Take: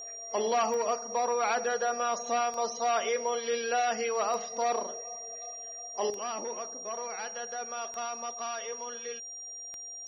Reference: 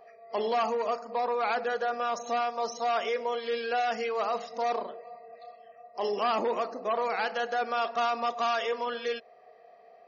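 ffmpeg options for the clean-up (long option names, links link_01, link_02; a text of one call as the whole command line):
ffmpeg -i in.wav -af "adeclick=threshold=4,bandreject=frequency=5700:width=30,asetnsamples=nb_out_samples=441:pad=0,asendcmd='6.1 volume volume 9dB',volume=0dB" out.wav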